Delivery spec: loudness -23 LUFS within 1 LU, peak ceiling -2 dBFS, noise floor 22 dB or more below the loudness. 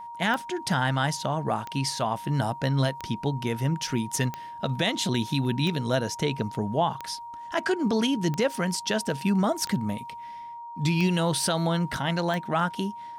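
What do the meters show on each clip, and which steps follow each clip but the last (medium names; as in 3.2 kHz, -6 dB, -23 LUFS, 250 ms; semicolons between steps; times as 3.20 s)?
clicks found 10; steady tone 940 Hz; tone level -37 dBFS; loudness -27.0 LUFS; peak level -13.0 dBFS; loudness target -23.0 LUFS
-> de-click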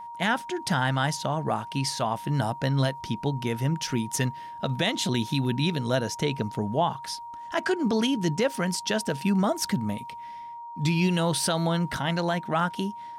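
clicks found 0; steady tone 940 Hz; tone level -37 dBFS
-> band-stop 940 Hz, Q 30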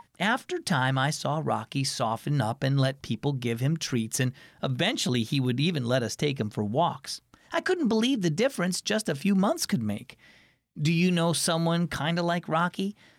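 steady tone not found; loudness -27.0 LUFS; peak level -14.0 dBFS; loudness target -23.0 LUFS
-> trim +4 dB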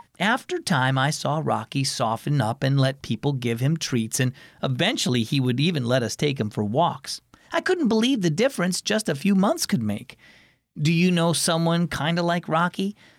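loudness -23.0 LUFS; peak level -10.0 dBFS; noise floor -59 dBFS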